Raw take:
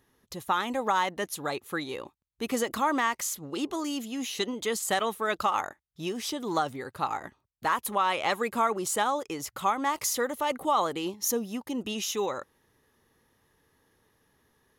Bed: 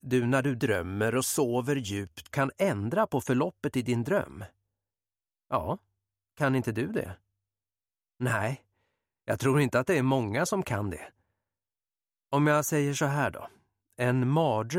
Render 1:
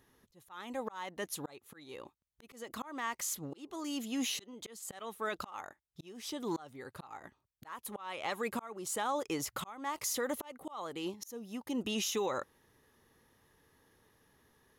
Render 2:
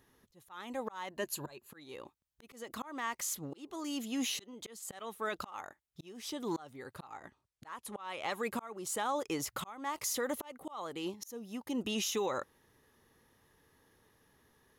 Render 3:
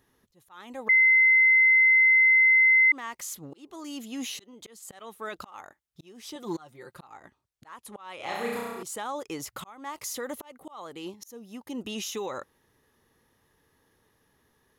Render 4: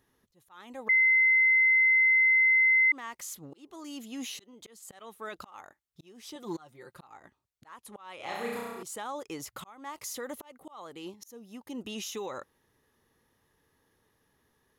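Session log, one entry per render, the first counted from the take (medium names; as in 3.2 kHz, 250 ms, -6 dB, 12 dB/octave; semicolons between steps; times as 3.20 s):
slow attack 740 ms; peak limiter -25 dBFS, peak gain reduction 6.5 dB
1.10–1.71 s: rippled EQ curve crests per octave 1.4, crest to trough 9 dB; 7.11–8.05 s: low-pass 11 kHz 24 dB/octave
0.89–2.92 s: bleep 2.06 kHz -15.5 dBFS; 6.35–6.99 s: comb 5.7 ms, depth 67%; 8.16–8.83 s: flutter echo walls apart 5.8 m, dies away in 1.3 s
trim -3.5 dB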